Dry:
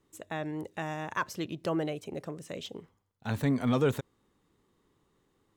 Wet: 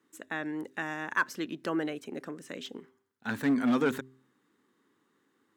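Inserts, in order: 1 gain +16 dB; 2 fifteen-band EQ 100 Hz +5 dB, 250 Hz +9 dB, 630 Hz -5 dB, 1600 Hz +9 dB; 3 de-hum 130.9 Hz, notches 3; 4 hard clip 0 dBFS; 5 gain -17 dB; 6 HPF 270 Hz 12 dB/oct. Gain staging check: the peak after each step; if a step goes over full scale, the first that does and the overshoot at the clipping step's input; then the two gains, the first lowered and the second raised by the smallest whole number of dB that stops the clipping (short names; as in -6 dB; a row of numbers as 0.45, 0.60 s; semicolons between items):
+0.5, +5.0, +5.0, 0.0, -17.0, -15.0 dBFS; step 1, 5.0 dB; step 1 +11 dB, step 5 -12 dB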